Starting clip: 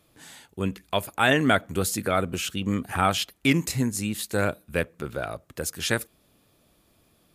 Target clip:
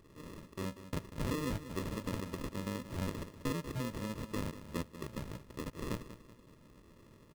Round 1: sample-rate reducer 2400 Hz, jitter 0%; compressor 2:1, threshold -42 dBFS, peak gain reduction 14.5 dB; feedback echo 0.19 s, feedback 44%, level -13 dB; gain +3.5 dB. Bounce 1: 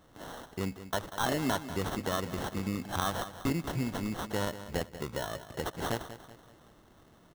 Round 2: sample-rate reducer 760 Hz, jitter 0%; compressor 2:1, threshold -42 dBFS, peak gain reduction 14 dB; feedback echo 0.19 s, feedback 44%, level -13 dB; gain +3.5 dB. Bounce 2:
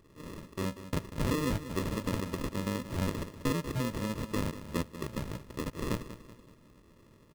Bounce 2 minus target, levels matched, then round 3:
compressor: peak gain reduction -5.5 dB
sample-rate reducer 760 Hz, jitter 0%; compressor 2:1, threshold -53 dBFS, peak gain reduction 19.5 dB; feedback echo 0.19 s, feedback 44%, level -13 dB; gain +3.5 dB

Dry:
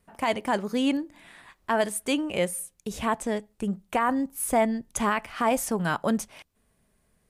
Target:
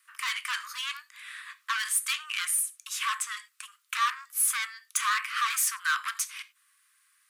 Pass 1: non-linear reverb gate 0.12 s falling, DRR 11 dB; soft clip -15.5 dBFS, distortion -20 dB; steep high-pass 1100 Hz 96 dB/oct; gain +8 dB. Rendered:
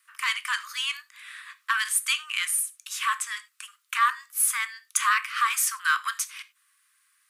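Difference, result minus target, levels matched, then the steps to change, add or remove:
soft clip: distortion -12 dB
change: soft clip -26 dBFS, distortion -9 dB

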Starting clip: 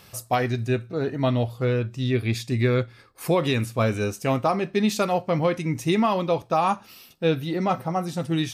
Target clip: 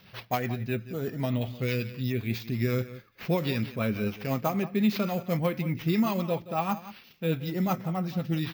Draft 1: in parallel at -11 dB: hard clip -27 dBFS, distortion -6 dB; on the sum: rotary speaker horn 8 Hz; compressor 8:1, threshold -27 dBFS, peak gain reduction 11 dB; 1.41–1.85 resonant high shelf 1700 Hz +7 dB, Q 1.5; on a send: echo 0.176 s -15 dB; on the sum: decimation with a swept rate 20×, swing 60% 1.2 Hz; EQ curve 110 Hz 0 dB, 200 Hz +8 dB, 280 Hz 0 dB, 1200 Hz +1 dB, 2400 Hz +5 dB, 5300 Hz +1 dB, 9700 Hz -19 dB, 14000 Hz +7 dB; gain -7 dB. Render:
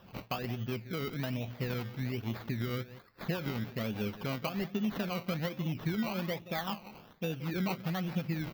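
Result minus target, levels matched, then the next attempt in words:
compressor: peak gain reduction +11 dB; decimation with a swept rate: distortion +10 dB
in parallel at -11 dB: hard clip -27 dBFS, distortion -6 dB; on the sum: rotary speaker horn 8 Hz; 1.41–1.85 resonant high shelf 1700 Hz +7 dB, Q 1.5; on a send: echo 0.176 s -15 dB; on the sum: decimation with a swept rate 5×, swing 60% 1.2 Hz; EQ curve 110 Hz 0 dB, 200 Hz +8 dB, 280 Hz 0 dB, 1200 Hz +1 dB, 2400 Hz +5 dB, 5300 Hz +1 dB, 9700 Hz -19 dB, 14000 Hz +7 dB; gain -7 dB

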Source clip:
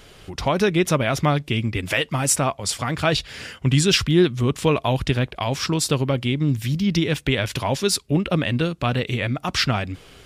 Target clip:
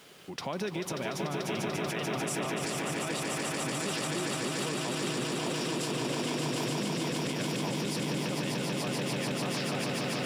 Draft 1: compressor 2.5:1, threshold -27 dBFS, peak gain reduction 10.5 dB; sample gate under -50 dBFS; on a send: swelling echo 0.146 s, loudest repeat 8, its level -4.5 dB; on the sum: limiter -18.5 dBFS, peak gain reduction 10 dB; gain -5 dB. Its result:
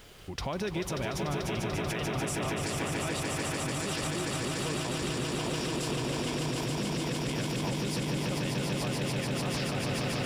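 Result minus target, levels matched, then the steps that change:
125 Hz band +3.5 dB
add after compressor: HPF 150 Hz 24 dB/oct

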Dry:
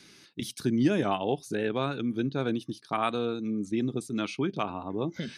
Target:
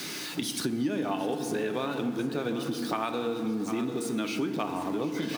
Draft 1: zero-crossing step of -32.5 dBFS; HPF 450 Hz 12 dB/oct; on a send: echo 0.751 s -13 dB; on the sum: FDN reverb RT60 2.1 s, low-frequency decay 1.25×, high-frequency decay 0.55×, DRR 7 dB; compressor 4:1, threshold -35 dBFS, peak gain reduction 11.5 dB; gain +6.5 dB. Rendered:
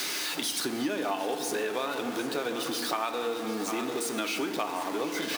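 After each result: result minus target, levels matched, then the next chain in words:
125 Hz band -10.5 dB; zero-crossing step: distortion +6 dB
zero-crossing step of -32.5 dBFS; HPF 160 Hz 12 dB/oct; on a send: echo 0.751 s -13 dB; on the sum: FDN reverb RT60 2.1 s, low-frequency decay 1.25×, high-frequency decay 0.55×, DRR 7 dB; compressor 4:1, threshold -35 dBFS, peak gain reduction 15.5 dB; gain +6.5 dB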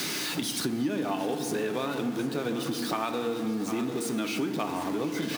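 zero-crossing step: distortion +6 dB
zero-crossing step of -40 dBFS; HPF 160 Hz 12 dB/oct; on a send: echo 0.751 s -13 dB; on the sum: FDN reverb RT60 2.1 s, low-frequency decay 1.25×, high-frequency decay 0.55×, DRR 7 dB; compressor 4:1, threshold -35 dBFS, peak gain reduction 15 dB; gain +6.5 dB

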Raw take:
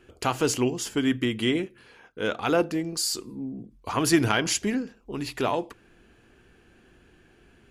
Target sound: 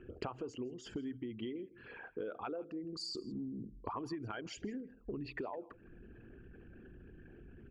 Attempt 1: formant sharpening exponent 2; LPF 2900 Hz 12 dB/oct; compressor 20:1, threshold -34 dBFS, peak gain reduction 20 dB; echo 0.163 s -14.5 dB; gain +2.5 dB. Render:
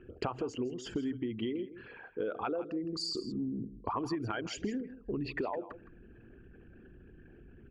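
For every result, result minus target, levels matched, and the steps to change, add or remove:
compressor: peak gain reduction -6.5 dB; echo-to-direct +7.5 dB
change: compressor 20:1, threshold -41 dBFS, peak gain reduction 26.5 dB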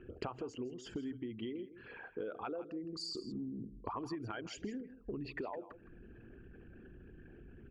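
echo-to-direct +7.5 dB
change: echo 0.163 s -22 dB

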